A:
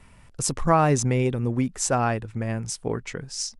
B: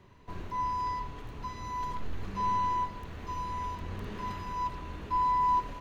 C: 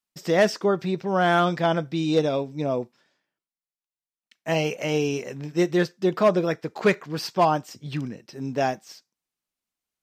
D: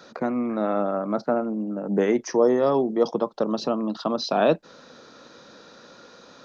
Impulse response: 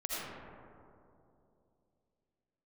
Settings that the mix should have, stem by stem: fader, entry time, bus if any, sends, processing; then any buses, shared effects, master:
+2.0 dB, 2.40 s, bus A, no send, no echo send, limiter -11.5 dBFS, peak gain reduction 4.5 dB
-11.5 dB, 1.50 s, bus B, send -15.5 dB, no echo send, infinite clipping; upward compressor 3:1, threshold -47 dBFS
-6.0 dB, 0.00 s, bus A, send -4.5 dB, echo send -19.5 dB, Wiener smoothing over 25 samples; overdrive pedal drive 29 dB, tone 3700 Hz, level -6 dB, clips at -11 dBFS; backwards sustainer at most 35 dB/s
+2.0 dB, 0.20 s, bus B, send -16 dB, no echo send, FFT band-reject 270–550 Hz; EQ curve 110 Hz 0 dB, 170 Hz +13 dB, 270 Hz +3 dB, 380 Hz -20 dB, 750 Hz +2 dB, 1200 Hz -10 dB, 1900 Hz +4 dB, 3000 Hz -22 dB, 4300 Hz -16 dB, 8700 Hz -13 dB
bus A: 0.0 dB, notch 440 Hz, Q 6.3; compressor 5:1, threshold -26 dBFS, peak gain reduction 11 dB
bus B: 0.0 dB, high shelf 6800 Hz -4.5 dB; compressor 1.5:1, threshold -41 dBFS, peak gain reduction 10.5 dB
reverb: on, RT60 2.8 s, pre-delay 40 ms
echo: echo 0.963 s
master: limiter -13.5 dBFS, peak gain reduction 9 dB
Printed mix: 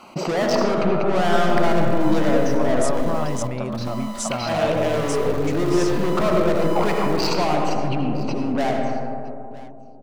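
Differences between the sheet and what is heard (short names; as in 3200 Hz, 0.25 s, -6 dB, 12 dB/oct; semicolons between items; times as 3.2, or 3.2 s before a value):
stem B -11.5 dB -> -2.0 dB; stem D: missing EQ curve 110 Hz 0 dB, 170 Hz +13 dB, 270 Hz +3 dB, 380 Hz -20 dB, 750 Hz +2 dB, 1200 Hz -10 dB, 1900 Hz +4 dB, 3000 Hz -22 dB, 4300 Hz -16 dB, 8700 Hz -13 dB; master: missing limiter -13.5 dBFS, peak gain reduction 9 dB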